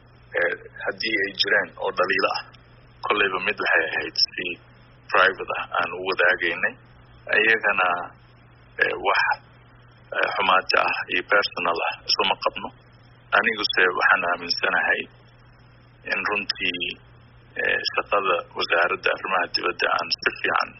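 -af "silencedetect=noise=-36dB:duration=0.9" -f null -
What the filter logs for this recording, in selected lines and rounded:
silence_start: 15.05
silence_end: 16.06 | silence_duration: 1.01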